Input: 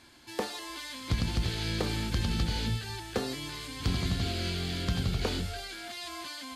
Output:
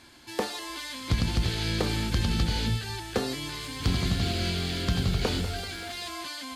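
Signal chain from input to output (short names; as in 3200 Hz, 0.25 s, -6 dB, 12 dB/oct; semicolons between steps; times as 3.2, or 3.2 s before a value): 3.44–6.11 lo-fi delay 0.192 s, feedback 55%, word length 9-bit, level -13 dB; gain +3.5 dB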